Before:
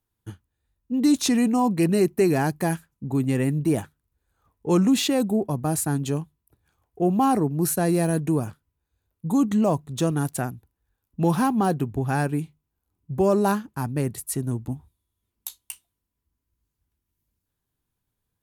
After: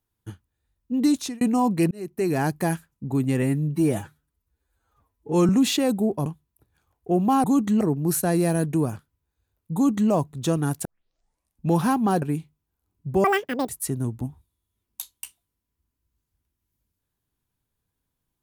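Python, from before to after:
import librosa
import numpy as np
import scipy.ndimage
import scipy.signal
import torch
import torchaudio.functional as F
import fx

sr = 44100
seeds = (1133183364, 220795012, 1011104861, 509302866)

y = fx.edit(x, sr, fx.fade_out_span(start_s=1.04, length_s=0.37),
    fx.fade_in_span(start_s=1.91, length_s=0.56),
    fx.stretch_span(start_s=3.42, length_s=1.38, factor=1.5),
    fx.cut(start_s=5.57, length_s=0.6),
    fx.duplicate(start_s=9.28, length_s=0.37, to_s=7.35),
    fx.tape_start(start_s=10.39, length_s=0.85),
    fx.cut(start_s=11.76, length_s=0.5),
    fx.speed_span(start_s=13.28, length_s=0.88, speed=1.95), tone=tone)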